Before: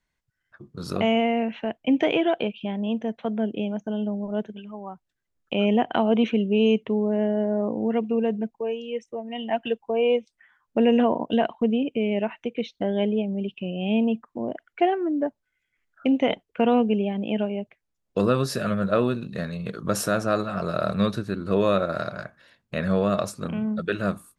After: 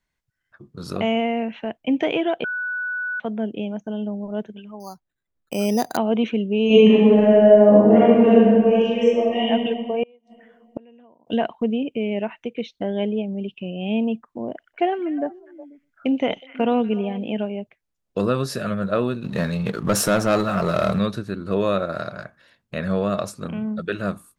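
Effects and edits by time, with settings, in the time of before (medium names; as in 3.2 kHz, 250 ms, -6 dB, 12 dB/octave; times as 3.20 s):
2.44–3.20 s: bleep 1.48 kHz -23.5 dBFS
4.80–5.97 s: careless resampling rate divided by 8×, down filtered, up hold
6.66–9.46 s: reverb throw, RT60 2 s, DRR -11.5 dB
10.03–11.27 s: inverted gate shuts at -19 dBFS, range -31 dB
14.49–17.36 s: repeats whose band climbs or falls 122 ms, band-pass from 4.8 kHz, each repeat -1.4 oct, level -9 dB
19.24–20.99 s: waveshaping leveller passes 2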